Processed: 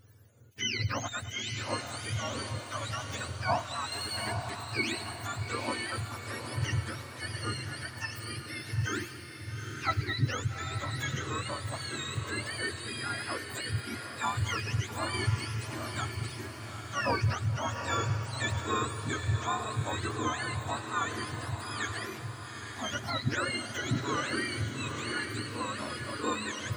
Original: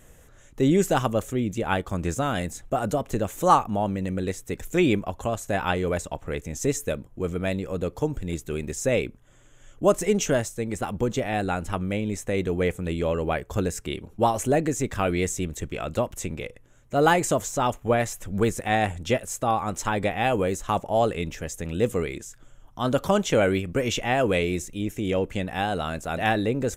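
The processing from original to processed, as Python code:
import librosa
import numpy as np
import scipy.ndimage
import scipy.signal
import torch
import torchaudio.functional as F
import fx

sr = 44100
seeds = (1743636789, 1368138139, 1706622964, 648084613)

y = fx.octave_mirror(x, sr, pivot_hz=900.0)
y = fx.echo_split(y, sr, split_hz=1500.0, low_ms=215, high_ms=104, feedback_pct=52, wet_db=-15.5)
y = fx.power_curve(y, sr, exponent=0.7, at=(3.92, 4.5))
y = fx.echo_diffused(y, sr, ms=843, feedback_pct=48, wet_db=-6.0)
y = y * 10.0 ** (-8.0 / 20.0)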